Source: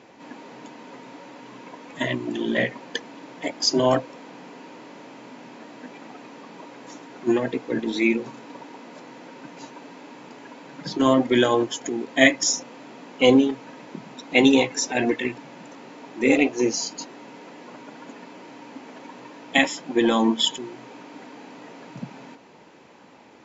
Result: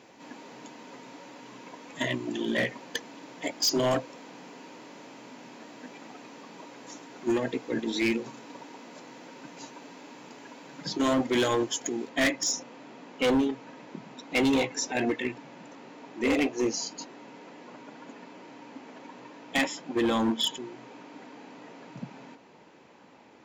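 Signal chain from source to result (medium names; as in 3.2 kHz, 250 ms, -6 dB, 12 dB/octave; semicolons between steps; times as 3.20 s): treble shelf 5.1 kHz +9.5 dB, from 12.09 s -2 dB; hard clipper -16 dBFS, distortion -10 dB; trim -4.5 dB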